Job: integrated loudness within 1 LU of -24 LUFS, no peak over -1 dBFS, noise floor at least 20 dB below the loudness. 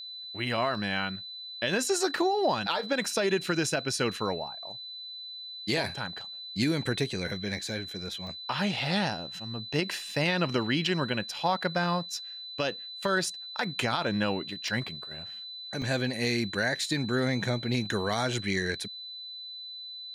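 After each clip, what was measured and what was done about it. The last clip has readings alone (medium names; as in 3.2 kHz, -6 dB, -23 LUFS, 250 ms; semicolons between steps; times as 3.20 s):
dropouts 5; longest dropout 1.5 ms; steady tone 4 kHz; tone level -39 dBFS; loudness -30.0 LUFS; peak level -15.5 dBFS; loudness target -24.0 LUFS
-> interpolate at 0.75/8.27/10.11/14.68/15.82 s, 1.5 ms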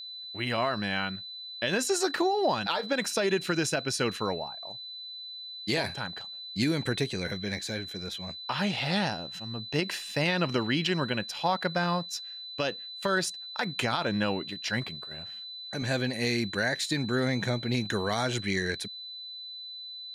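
dropouts 0; steady tone 4 kHz; tone level -39 dBFS
-> band-stop 4 kHz, Q 30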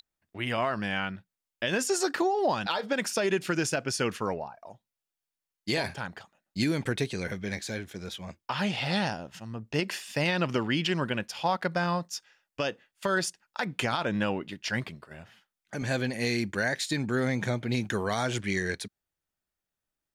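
steady tone not found; loudness -30.0 LUFS; peak level -15.0 dBFS; loudness target -24.0 LUFS
-> trim +6 dB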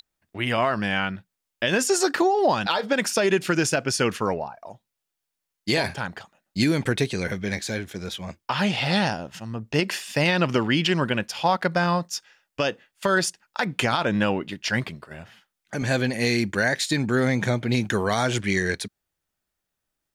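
loudness -24.0 LUFS; peak level -9.0 dBFS; noise floor -83 dBFS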